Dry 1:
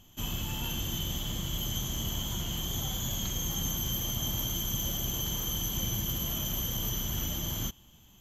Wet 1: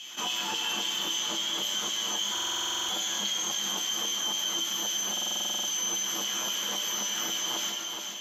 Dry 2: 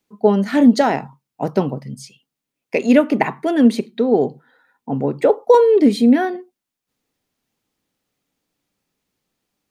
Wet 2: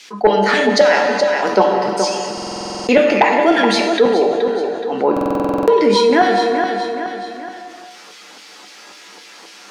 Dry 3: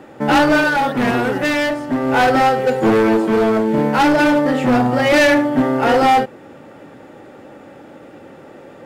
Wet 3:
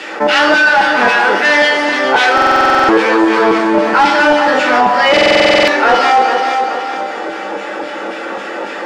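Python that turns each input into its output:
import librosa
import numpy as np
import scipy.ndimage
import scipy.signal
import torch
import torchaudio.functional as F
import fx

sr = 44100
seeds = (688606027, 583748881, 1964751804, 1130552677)

p1 = fx.peak_eq(x, sr, hz=5300.0, db=5.5, octaves=0.8)
p2 = fx.filter_lfo_highpass(p1, sr, shape='saw_down', hz=3.7, low_hz=860.0, high_hz=2700.0, q=1.4)
p3 = fx.comb_fb(p2, sr, f0_hz=66.0, decay_s=0.25, harmonics='odd', damping=0.0, mix_pct=80)
p4 = fx.small_body(p3, sr, hz=(220.0, 340.0), ring_ms=20, db=16)
p5 = p4 + fx.echo_feedback(p4, sr, ms=423, feedback_pct=24, wet_db=-12, dry=0)
p6 = fx.rev_gated(p5, sr, seeds[0], gate_ms=450, shape='falling', drr_db=6.0)
p7 = fx.rider(p6, sr, range_db=3, speed_s=0.5)
p8 = p6 + (p7 * 10.0 ** (-2.5 / 20.0))
p9 = fx.fold_sine(p8, sr, drive_db=7, ceiling_db=2.0)
p10 = fx.air_absorb(p9, sr, metres=64.0)
p11 = fx.buffer_glitch(p10, sr, at_s=(2.33, 5.12), block=2048, repeats=11)
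p12 = fx.env_flatten(p11, sr, amount_pct=50)
y = p12 * 10.0 ** (-5.5 / 20.0)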